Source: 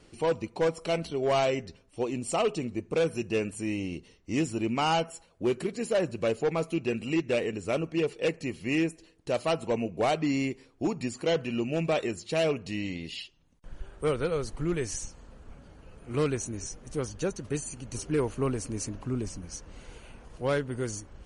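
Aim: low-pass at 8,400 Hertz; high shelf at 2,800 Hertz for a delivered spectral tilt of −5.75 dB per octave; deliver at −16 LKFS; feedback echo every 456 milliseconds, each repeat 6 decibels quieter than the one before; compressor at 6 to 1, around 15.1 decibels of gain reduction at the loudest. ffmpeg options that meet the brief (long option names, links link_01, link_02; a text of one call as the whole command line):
ffmpeg -i in.wav -af "lowpass=8400,highshelf=frequency=2800:gain=-7,acompressor=threshold=-40dB:ratio=6,aecho=1:1:456|912|1368|1824|2280|2736:0.501|0.251|0.125|0.0626|0.0313|0.0157,volume=27dB" out.wav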